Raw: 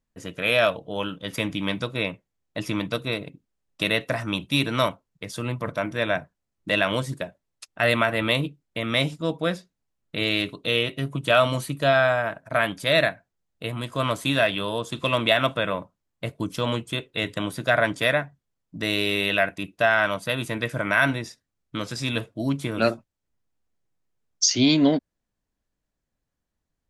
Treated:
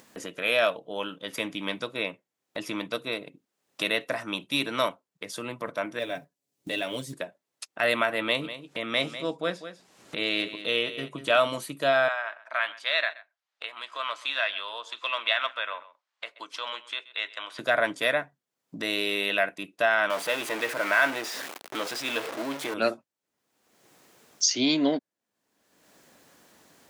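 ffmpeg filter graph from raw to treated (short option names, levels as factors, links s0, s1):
-filter_complex "[0:a]asettb=1/sr,asplit=3[s0][s1][s2];[s0]atrim=end=5.994[s3];[s1]atrim=start=5.99:end=7.13,asetpts=PTS-STARTPTS,afade=t=in:d=0.004:c=qsin,afade=t=out:st=1.136:d=0.004:c=qsin,equalizer=f=1300:t=o:w=2:g=-13,acrusher=bits=8:mode=log:mix=0:aa=0.000001,aecho=1:1:7.1:0.62,atrim=end_sample=50274[s4];[s2]atrim=start=7.126[s5];[s3][s4]acrossfade=d=0.004:c1=hsin:c2=qsin[s6];[s6][s5]acrossfade=d=0.004:c1=qsin:c2=hsin,asettb=1/sr,asplit=3[s7][s8][s9];[s7]atrim=end=8.224[s10];[s8]atrim=start=8.22:end=11.39,asetpts=PTS-STARTPTS,afade=t=in:d=0.004:c=qsin,afade=t=out:st=3.166:d=0.004:c=qsin,lowpass=9100,acompressor=mode=upward:threshold=0.0224:ratio=2.5:attack=3.2:release=140:knee=2.83:detection=peak,aecho=1:1:196:0.237,atrim=end_sample=139797[s11];[s9]atrim=start=11.386[s12];[s10][s11]acrossfade=d=0.004:c1=hsin:c2=qsin[s13];[s13][s12]acrossfade=d=0.004:c1=qsin:c2=hsin,asettb=1/sr,asplit=3[s14][s15][s16];[s14]atrim=end=12.084[s17];[s15]atrim=start=12.08:end=17.59,asetpts=PTS-STARTPTS,afade=t=in:d=0.004:c=qsin,afade=t=out:st=5.506:d=0.004:c=qsin,asuperpass=centerf=2200:order=4:qfactor=0.53,aecho=1:1:128:0.106,atrim=end_sample=242991[s18];[s16]atrim=start=17.586[s19];[s17][s18]acrossfade=d=0.004:c1=hsin:c2=qsin[s20];[s20][s19]acrossfade=d=0.004:c1=qsin:c2=hsin,asettb=1/sr,asplit=3[s21][s22][s23];[s21]atrim=end=20.104[s24];[s22]atrim=start=20.1:end=22.74,asetpts=PTS-STARTPTS,afade=t=in:d=0.004:c=qsin,afade=t=out:st=2.636:d=0.004:c=qsin,aeval=exprs='val(0)+0.5*0.0708*sgn(val(0))':c=same,bass=f=250:g=-14,treble=f=4000:g=-7,acrusher=bits=6:mix=0:aa=0.5[s25];[s23]atrim=start=22.736[s26];[s24][s25]acrossfade=d=0.004:c1=hsin:c2=qsin[s27];[s27][s26]acrossfade=d=0.004:c1=qsin:c2=hsin,highpass=280,acompressor=mode=upward:threshold=0.0355:ratio=2.5,volume=0.708"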